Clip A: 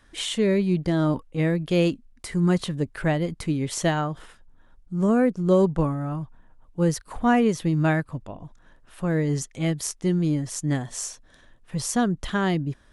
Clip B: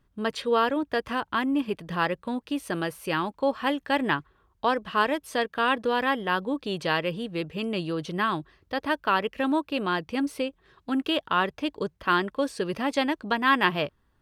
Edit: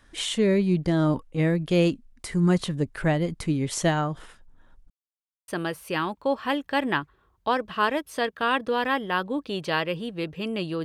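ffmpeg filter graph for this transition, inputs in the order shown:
-filter_complex "[0:a]apad=whole_dur=10.84,atrim=end=10.84,asplit=2[a][b];[a]atrim=end=4.9,asetpts=PTS-STARTPTS,afade=t=out:st=4.896:d=0.004:c=hsin[c];[b]atrim=start=4.9:end=5.48,asetpts=PTS-STARTPTS,volume=0[d];[1:a]atrim=start=2.65:end=8.01,asetpts=PTS-STARTPTS,afade=t=in:d=0.004:c=hsin[e];[c][d][e]concat=n=3:v=0:a=1"

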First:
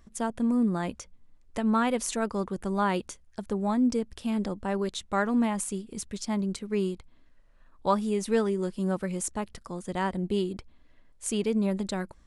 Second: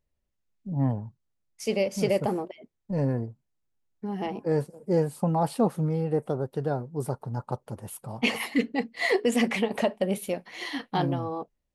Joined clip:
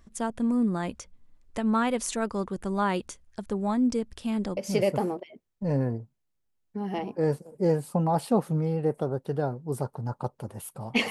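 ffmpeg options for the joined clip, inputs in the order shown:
-filter_complex "[0:a]apad=whole_dur=11.1,atrim=end=11.1,atrim=end=4.572[a];[1:a]atrim=start=1.848:end=8.38[b];[a][b]acrossfade=d=0.004:c1=hsin:c2=hsin"

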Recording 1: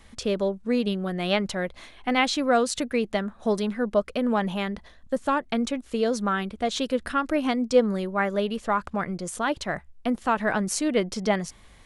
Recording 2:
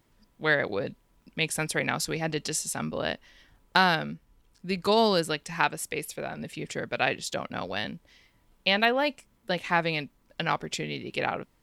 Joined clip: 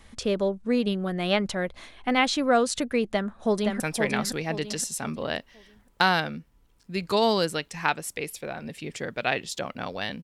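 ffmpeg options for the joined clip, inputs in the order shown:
-filter_complex "[0:a]apad=whole_dur=10.23,atrim=end=10.23,atrim=end=3.802[a];[1:a]atrim=start=1.548:end=7.98[b];[a][b]acrossfade=d=0.004:c1=hsin:c2=hsin,asplit=2[c][d];[d]afade=t=in:st=3.09:d=0.01,afade=t=out:st=3.8:d=0.01,aecho=0:1:520|1040|1560|2080:0.595662|0.208482|0.0729686|0.025539[e];[c][e]amix=inputs=2:normalize=0"

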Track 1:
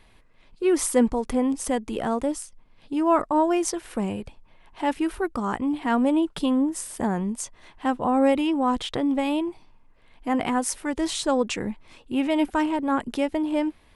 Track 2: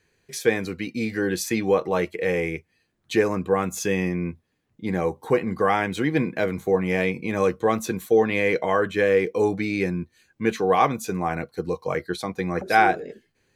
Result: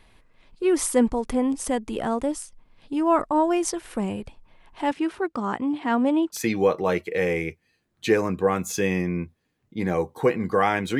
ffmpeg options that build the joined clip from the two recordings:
-filter_complex "[0:a]asettb=1/sr,asplit=3[a][b][c];[a]atrim=end=4.914[d];[b]atrim=start=4.91:end=6.38,asetpts=PTS-STARTPTS,afade=t=in:d=0.004:c=qsin,afade=t=out:st=1.466:d=0.004:c=qsin,highpass=130,lowpass=6.4k[e];[c]atrim=start=6.376[f];[d][e]acrossfade=d=0.004:c1=hsin:c2=qsin[g];[g][f]acrossfade=d=0.004:c1=qsin:c2=hsin,apad=whole_dur=10.99,atrim=end=10.99,atrim=end=6.38,asetpts=PTS-STARTPTS[h];[1:a]atrim=start=1.39:end=6.06,asetpts=PTS-STARTPTS[i];[h][i]acrossfade=d=0.06:c1=tri:c2=tri"

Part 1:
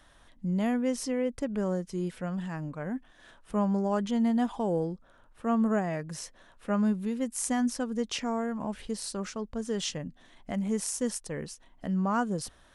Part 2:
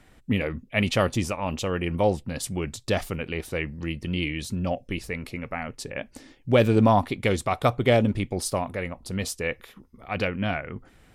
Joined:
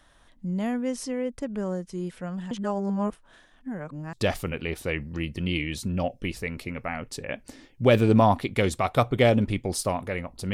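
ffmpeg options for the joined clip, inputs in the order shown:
-filter_complex "[0:a]apad=whole_dur=10.53,atrim=end=10.53,asplit=2[a][b];[a]atrim=end=2.512[c];[b]atrim=start=2.508:end=4.132,asetpts=PTS-STARTPTS,areverse[d];[1:a]atrim=start=2.798:end=9.2[e];[c][d]acrossfade=d=0.004:c1=hsin:c2=hsin[f];[f][e]acrossfade=d=0.004:c1=hsin:c2=hsin"

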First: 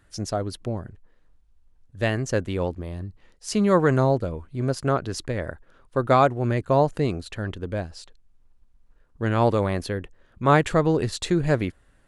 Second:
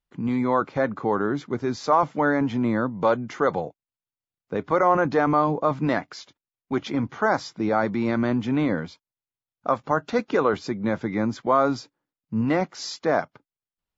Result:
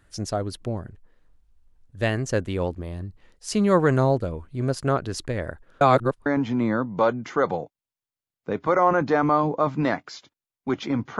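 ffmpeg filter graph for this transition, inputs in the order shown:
-filter_complex "[0:a]apad=whole_dur=11.19,atrim=end=11.19,asplit=2[a][b];[a]atrim=end=5.812[c];[b]atrim=start=5.808:end=6.262,asetpts=PTS-STARTPTS,areverse[d];[1:a]atrim=start=2.298:end=7.23[e];[c][d]acrossfade=d=0.004:c1=hsin:c2=hsin[f];[f][e]acrossfade=d=0.004:c1=hsin:c2=hsin"

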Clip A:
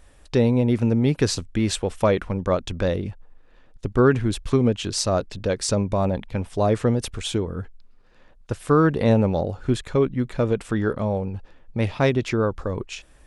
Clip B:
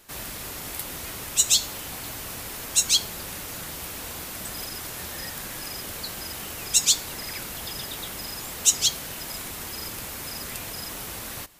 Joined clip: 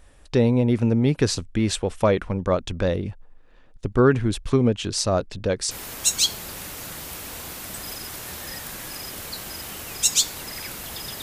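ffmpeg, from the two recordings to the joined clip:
-filter_complex "[0:a]apad=whole_dur=11.22,atrim=end=11.22,atrim=end=5.712[a];[1:a]atrim=start=2.418:end=7.93[b];[a][b]acrossfade=d=0.004:c1=hsin:c2=hsin"

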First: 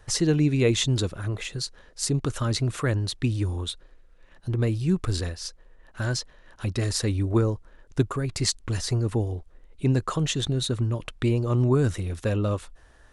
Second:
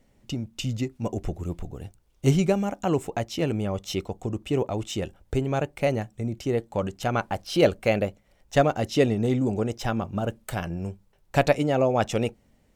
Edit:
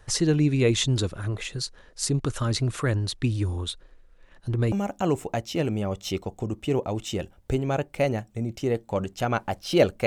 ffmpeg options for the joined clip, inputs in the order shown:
-filter_complex "[0:a]apad=whole_dur=10.06,atrim=end=10.06,atrim=end=4.722[a];[1:a]atrim=start=2.548:end=7.89[b];[a][b]acrossfade=d=0.004:c1=hsin:c2=hsin"

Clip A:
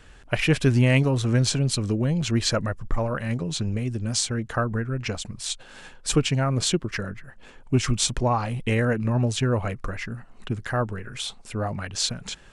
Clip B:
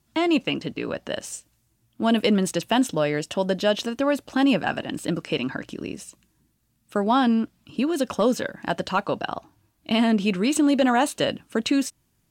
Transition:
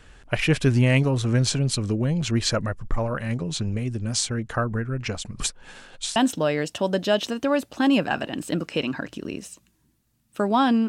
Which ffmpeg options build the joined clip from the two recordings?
-filter_complex "[0:a]apad=whole_dur=10.88,atrim=end=10.88,asplit=2[a][b];[a]atrim=end=5.402[c];[b]atrim=start=5.398:end=6.162,asetpts=PTS-STARTPTS,areverse[d];[1:a]atrim=start=2.718:end=7.44[e];[c][d]acrossfade=d=0.004:c1=hsin:c2=hsin[f];[f][e]acrossfade=d=0.004:c1=hsin:c2=hsin"

